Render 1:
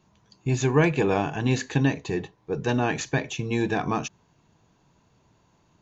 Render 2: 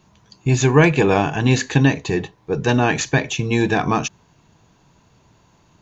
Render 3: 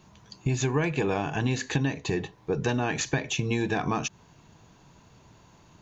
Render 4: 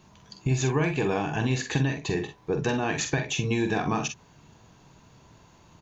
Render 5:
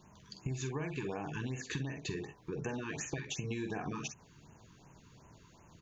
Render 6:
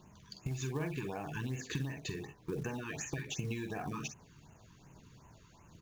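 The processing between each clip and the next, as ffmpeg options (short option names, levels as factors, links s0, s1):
-af "equalizer=f=380:w=0.38:g=-2.5,volume=2.82"
-af "acompressor=threshold=0.0562:ratio=4"
-af "aecho=1:1:46|60:0.422|0.188"
-af "acompressor=threshold=0.0251:ratio=4,afftfilt=real='re*(1-between(b*sr/1024,600*pow(4400/600,0.5+0.5*sin(2*PI*2.7*pts/sr))/1.41,600*pow(4400/600,0.5+0.5*sin(2*PI*2.7*pts/sr))*1.41))':imag='im*(1-between(b*sr/1024,600*pow(4400/600,0.5+0.5*sin(2*PI*2.7*pts/sr))/1.41,600*pow(4400/600,0.5+0.5*sin(2*PI*2.7*pts/sr))*1.41))':win_size=1024:overlap=0.75,volume=0.631"
-af "aphaser=in_gain=1:out_gain=1:delay=1.7:decay=0.3:speed=1.2:type=triangular,acrusher=bits=6:mode=log:mix=0:aa=0.000001,volume=0.891"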